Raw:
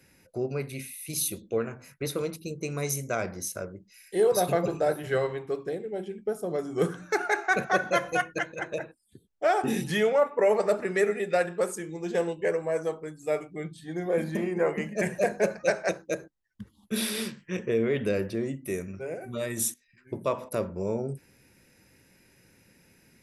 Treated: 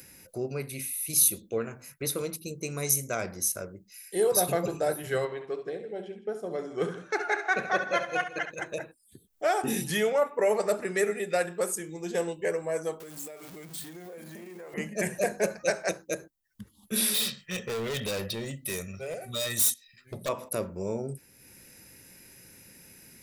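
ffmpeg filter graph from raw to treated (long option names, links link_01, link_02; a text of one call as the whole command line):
ffmpeg -i in.wav -filter_complex "[0:a]asettb=1/sr,asplit=3[link_01][link_02][link_03];[link_01]atrim=end=5.254[link_04];[link_02]atrim=start=5.25:end=8.51,asetpts=PTS-STARTPTS,afade=type=in:duration=0.004:curve=qsin,afade=type=out:start_time=3.256:duration=0.004:curve=qsin,lowpass=3900,lowshelf=frequency=150:gain=-11,aecho=1:1:69|161:0.316|0.15,atrim=end_sample=143766[link_05];[link_03]atrim=start=8.506[link_06];[link_04][link_05]acrossfade=duration=0.004:curve1=hsin:curve2=qsin[link_07];[link_07][link_06]acrossfade=duration=0.004:curve1=qsin:curve2=hsin,asettb=1/sr,asplit=3[link_08][link_09][link_10];[link_08]atrim=end=13.004[link_11];[link_09]atrim=start=13:end=14.74,asetpts=PTS-STARTPTS,afade=type=in:duration=0.004:curve=qsin,afade=type=out:start_time=1.736:duration=0.004:curve=qsin,aeval=exprs='val(0)+0.5*0.0112*sgn(val(0))':channel_layout=same,highpass=frequency=190:poles=1,acompressor=threshold=-39dB:ratio=8:attack=3.2:release=140:knee=1:detection=peak[link_12];[link_10]atrim=start=14.736[link_13];[link_11][link_12]acrossfade=duration=0.004:curve1=hsin:curve2=qsin[link_14];[link_14][link_13]acrossfade=duration=0.004:curve1=qsin:curve2=hsin,asettb=1/sr,asplit=3[link_15][link_16][link_17];[link_15]atrim=end=17.144[link_18];[link_16]atrim=start=17.14:end=20.29,asetpts=PTS-STARTPTS,afade=type=in:duration=0.004:curve=qsin,afade=type=out:start_time=3.146:duration=0.004:curve=qsin,equalizer=frequency=3800:width_type=o:width=0.75:gain=14.5,aecho=1:1:1.6:0.6,atrim=end_sample=138915,asoftclip=type=hard:threshold=-27.5dB[link_19];[link_17]atrim=start=20.286[link_20];[link_18][link_19]acrossfade=duration=0.004:curve1=hsin:curve2=qsin[link_21];[link_21][link_20]acrossfade=duration=0.004:curve1=qsin:curve2=hsin,aemphasis=mode=production:type=50kf,acompressor=mode=upward:threshold=-42dB:ratio=2.5,volume=-2.5dB" out.wav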